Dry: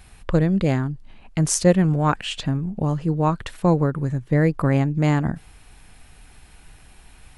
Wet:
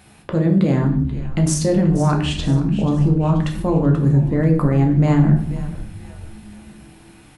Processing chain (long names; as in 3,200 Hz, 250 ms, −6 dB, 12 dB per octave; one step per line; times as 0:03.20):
high-pass filter 190 Hz 12 dB per octave
low-shelf EQ 390 Hz +11.5 dB
mains-hum notches 60/120/180/240/300/360/420/480 Hz
brickwall limiter −12 dBFS, peak gain reduction 10.5 dB
echo with shifted repeats 484 ms, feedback 43%, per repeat −120 Hz, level −14 dB
on a send at −2 dB: convolution reverb RT60 0.60 s, pre-delay 7 ms